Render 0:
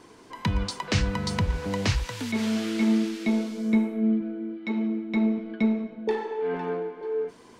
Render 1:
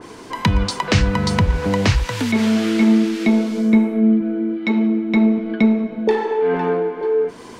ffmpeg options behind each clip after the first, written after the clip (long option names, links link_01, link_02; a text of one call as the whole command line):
ffmpeg -i in.wav -filter_complex "[0:a]asplit=2[link_01][link_02];[link_02]acompressor=threshold=-32dB:ratio=6,volume=2.5dB[link_03];[link_01][link_03]amix=inputs=2:normalize=0,adynamicequalizer=threshold=0.00631:dfrequency=2900:dqfactor=0.7:tfrequency=2900:tqfactor=0.7:attack=5:release=100:ratio=0.375:range=2:mode=cutabove:tftype=highshelf,volume=6dB" out.wav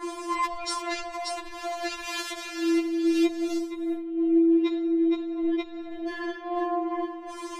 ffmpeg -i in.wav -af "acompressor=threshold=-20dB:ratio=3,alimiter=limit=-19dB:level=0:latency=1:release=15,afftfilt=real='re*4*eq(mod(b,16),0)':imag='im*4*eq(mod(b,16),0)':win_size=2048:overlap=0.75,volume=3.5dB" out.wav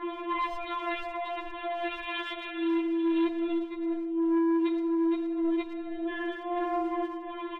ffmpeg -i in.wav -filter_complex "[0:a]aresample=8000,asoftclip=type=tanh:threshold=-23dB,aresample=44100,asplit=2[link_01][link_02];[link_02]adelay=110,highpass=300,lowpass=3400,asoftclip=type=hard:threshold=-32dB,volume=-10dB[link_03];[link_01][link_03]amix=inputs=2:normalize=0" out.wav